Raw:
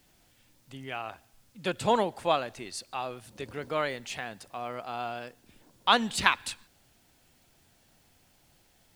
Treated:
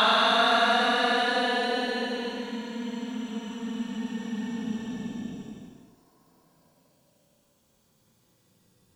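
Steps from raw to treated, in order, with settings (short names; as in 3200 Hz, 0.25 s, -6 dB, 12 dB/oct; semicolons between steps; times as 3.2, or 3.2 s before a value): slices in reverse order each 0.189 s, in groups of 4; added harmonics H 7 -37 dB, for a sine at -3 dBFS; Paulstretch 43×, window 0.05 s, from 5.36; gain -2 dB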